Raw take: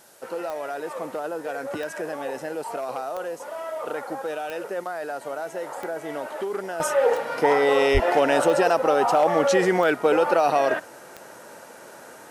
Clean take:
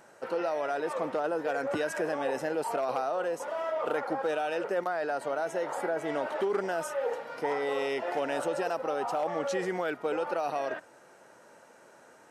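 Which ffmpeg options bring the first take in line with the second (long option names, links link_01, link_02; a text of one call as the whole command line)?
ffmpeg -i in.wav -filter_complex "[0:a]adeclick=threshold=4,asplit=3[link_01][link_02][link_03];[link_01]afade=type=out:start_time=7.93:duration=0.02[link_04];[link_02]highpass=frequency=140:width=0.5412,highpass=frequency=140:width=1.3066,afade=type=in:start_time=7.93:duration=0.02,afade=type=out:start_time=8.05:duration=0.02[link_05];[link_03]afade=type=in:start_time=8.05:duration=0.02[link_06];[link_04][link_05][link_06]amix=inputs=3:normalize=0,agate=range=-21dB:threshold=-36dB,asetnsamples=nb_out_samples=441:pad=0,asendcmd='6.8 volume volume -11.5dB',volume=0dB" out.wav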